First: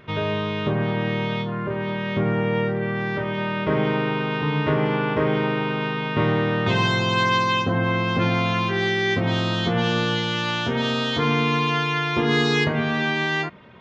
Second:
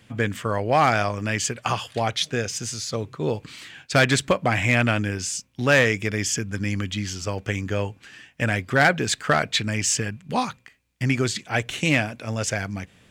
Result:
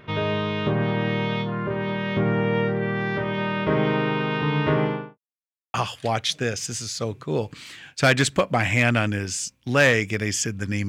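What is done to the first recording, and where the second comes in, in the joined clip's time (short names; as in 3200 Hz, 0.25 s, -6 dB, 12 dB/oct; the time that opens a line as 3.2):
first
4.76–5.18 studio fade out
5.18–5.74 mute
5.74 switch to second from 1.66 s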